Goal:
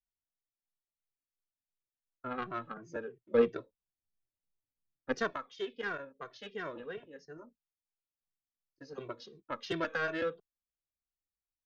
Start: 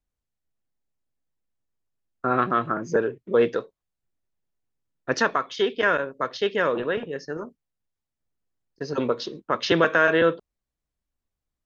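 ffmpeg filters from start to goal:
-filter_complex "[0:a]asettb=1/sr,asplit=3[s0][s1][s2];[s0]atrim=end=3.344[s3];[s1]atrim=start=3.34:end=5.33,asetpts=PTS-STARTPTS,afade=t=in:d=0.004:c=qsin,afade=t=out:st=1.986:d=0.004:c=qsin,lowshelf=f=480:g=8.5[s4];[s2]atrim=start=5.326[s5];[s3][s4]acrossfade=d=0.004:c1=hsin:c2=qsin[s6];[s6][s5]acrossfade=d=0.004:c1=qsin:c2=hsin,aeval=exprs='0.562*(cos(1*acos(clip(val(0)/0.562,-1,1)))-cos(1*PI/2))+0.112*(cos(3*acos(clip(val(0)/0.562,-1,1)))-cos(3*PI/2))':c=same,asplit=2[s7][s8];[s8]adelay=2.1,afreqshift=-2.9[s9];[s7][s9]amix=inputs=2:normalize=1,volume=0.447"

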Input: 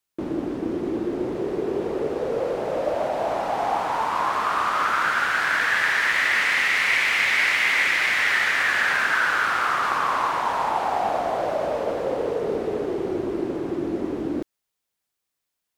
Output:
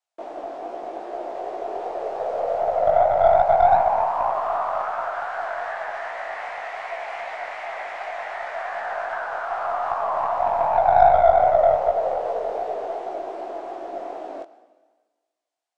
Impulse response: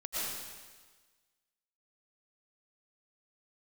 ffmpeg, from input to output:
-filter_complex "[0:a]highpass=f=690:t=q:w=8.6,acrossover=split=1100[s0][s1];[s1]acompressor=threshold=0.02:ratio=12[s2];[s0][s2]amix=inputs=2:normalize=0,lowpass=f=8900:w=0.5412,lowpass=f=8900:w=1.3066,asplit=2[s3][s4];[1:a]atrim=start_sample=2205[s5];[s4][s5]afir=irnorm=-1:irlink=0,volume=0.106[s6];[s3][s6]amix=inputs=2:normalize=0,aeval=exprs='1.06*(cos(1*acos(clip(val(0)/1.06,-1,1)))-cos(1*PI/2))+0.168*(cos(2*acos(clip(val(0)/1.06,-1,1)))-cos(2*PI/2))+0.0211*(cos(7*acos(clip(val(0)/1.06,-1,1)))-cos(7*PI/2))':c=same,flanger=delay=16:depth=5.3:speed=2.6,atempo=1,volume=0.841"

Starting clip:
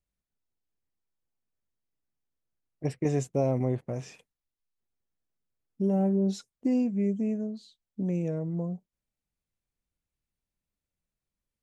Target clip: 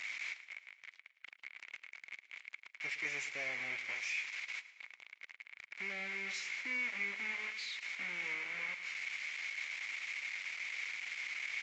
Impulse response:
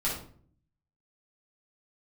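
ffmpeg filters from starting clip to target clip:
-filter_complex "[0:a]aeval=exprs='val(0)+0.5*0.0188*sgn(val(0))':c=same,aemphasis=mode=production:type=75fm,asplit=2[s0][s1];[s1]acompressor=threshold=0.02:ratio=8,volume=1[s2];[s0][s2]amix=inputs=2:normalize=0,aeval=exprs='0.282*(cos(1*acos(clip(val(0)/0.282,-1,1)))-cos(1*PI/2))+0.0141*(cos(2*acos(clip(val(0)/0.282,-1,1)))-cos(2*PI/2))+0.0112*(cos(6*acos(clip(val(0)/0.282,-1,1)))-cos(6*PI/2))':c=same,aeval=exprs='val(0)+0.00501*(sin(2*PI*50*n/s)+sin(2*PI*2*50*n/s)/2+sin(2*PI*3*50*n/s)/3+sin(2*PI*4*50*n/s)/4+sin(2*PI*5*50*n/s)/5)':c=same,aeval=exprs='val(0)*gte(abs(val(0)),0.0531)':c=same,bandpass=f=2200:t=q:w=13:csg=0,asplit=2[s3][s4];[s4]aecho=0:1:110|220|330|440|550|660:0.15|0.0883|0.0521|0.0307|0.0181|0.0107[s5];[s3][s5]amix=inputs=2:normalize=0,volume=3.16" -ar 16000 -c:a libvorbis -b:a 48k

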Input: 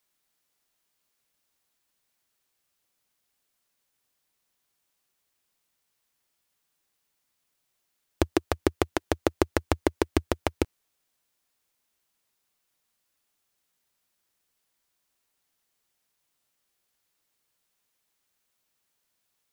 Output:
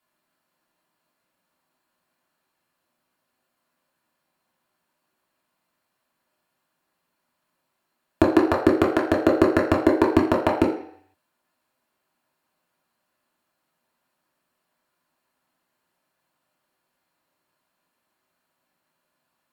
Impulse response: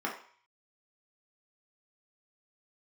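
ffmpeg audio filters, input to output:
-filter_complex "[0:a]asettb=1/sr,asplit=3[s0][s1][s2];[s0]atrim=end=8.644[s3];[s1]atrim=start=8.64:end=9.96,asetpts=PTS-STARTPTS,afade=t=in:d=0.004:c=qsin,afade=t=out:st=1.316:d=0.004:c=qsin,equalizer=f=900:t=o:w=0.34:g=-8[s4];[s2]atrim=start=9.956[s5];[s3][s4]acrossfade=d=0.004:c1=hsin:c2=qsin[s6];[s6][s5]acrossfade=d=0.004:c1=qsin:c2=hsin[s7];[1:a]atrim=start_sample=2205,asetrate=34839,aresample=44100[s8];[s7][s8]afir=irnorm=-1:irlink=0"

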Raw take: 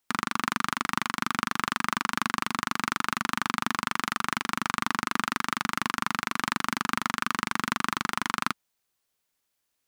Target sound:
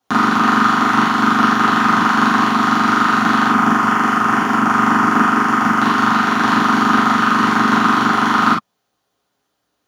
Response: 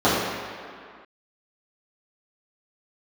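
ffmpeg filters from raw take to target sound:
-filter_complex "[0:a]asettb=1/sr,asplit=3[s0][s1][s2];[s0]atrim=end=3.474[s3];[s1]atrim=start=3.47:end=5.81,asetpts=PTS-STARTPTS,afade=t=in:d=0.004:c=qsin,afade=t=out:st=2.336:d=0.004:c=qsin,equalizer=f=3900:w=3.1:g=-13.5[s4];[s2]atrim=start=5.806[s5];[s3][s4]acrossfade=d=0.004:c1=hsin:c2=qsin[s6];[s6][s5]acrossfade=d=0.004:c1=qsin:c2=hsin[s7];[1:a]atrim=start_sample=2205,atrim=end_sample=3528[s8];[s7][s8]afir=irnorm=-1:irlink=0,volume=0.501"

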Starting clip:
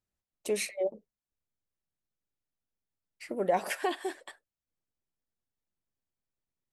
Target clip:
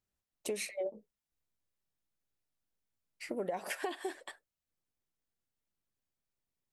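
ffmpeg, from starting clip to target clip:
-filter_complex "[0:a]asettb=1/sr,asplit=3[s0][s1][s2];[s0]atrim=end=0.844[s3];[s1]atrim=start=0.84:end=3.3,asetpts=PTS-STARTPTS,afade=t=in:d=0.004:c=qsin,afade=t=out:st=2.456:d=0.004:c=qsin,asplit=2[s4][s5];[s5]adelay=19,volume=0.531[s6];[s4][s6]amix=inputs=2:normalize=0,atrim=end_sample=108486[s7];[s2]atrim=start=3.296[s8];[s3][s7]acrossfade=d=0.004:c1=hsin:c2=qsin[s9];[s9][s8]acrossfade=d=0.004:c1=qsin:c2=hsin,acompressor=threshold=0.0224:ratio=10"

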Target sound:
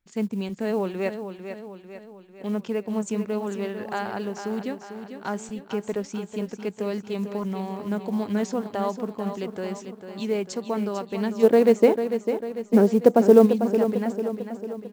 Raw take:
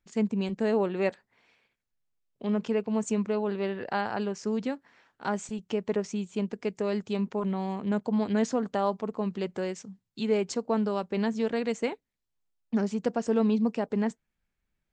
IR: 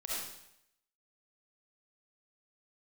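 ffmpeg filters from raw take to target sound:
-filter_complex "[0:a]asplit=3[s0][s1][s2];[s0]afade=t=out:st=11.42:d=0.02[s3];[s1]equalizer=f=430:t=o:w=2.7:g=14,afade=t=in:st=11.42:d=0.02,afade=t=out:st=13.45:d=0.02[s4];[s2]afade=t=in:st=13.45:d=0.02[s5];[s3][s4][s5]amix=inputs=3:normalize=0,acrusher=bits=8:mode=log:mix=0:aa=0.000001,aecho=1:1:447|894|1341|1788|2235|2682:0.355|0.185|0.0959|0.0499|0.0259|0.0135"

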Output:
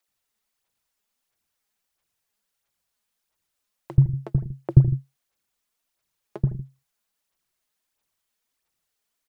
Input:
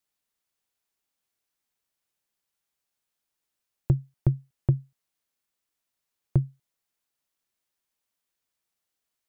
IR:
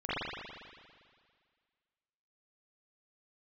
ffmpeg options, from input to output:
-filter_complex "[0:a]aphaser=in_gain=1:out_gain=1:delay=4.9:decay=0.56:speed=1.5:type=sinusoidal,acrossover=split=330[s0][s1];[s0]adelay=80[s2];[s2][s1]amix=inputs=2:normalize=0,asplit=2[s3][s4];[1:a]atrim=start_sample=2205,afade=t=out:st=0.13:d=0.01,atrim=end_sample=6174,asetrate=22932,aresample=44100[s5];[s4][s5]afir=irnorm=-1:irlink=0,volume=0.106[s6];[s3][s6]amix=inputs=2:normalize=0,volume=1.26"

